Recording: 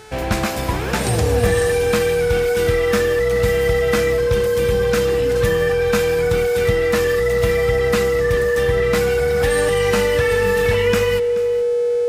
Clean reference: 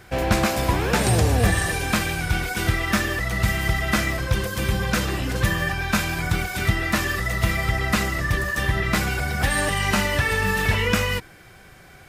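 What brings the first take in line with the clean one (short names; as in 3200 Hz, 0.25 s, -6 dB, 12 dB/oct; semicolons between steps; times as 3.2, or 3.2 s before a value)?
de-hum 433.5 Hz, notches 24; notch 480 Hz, Q 30; inverse comb 0.429 s -16.5 dB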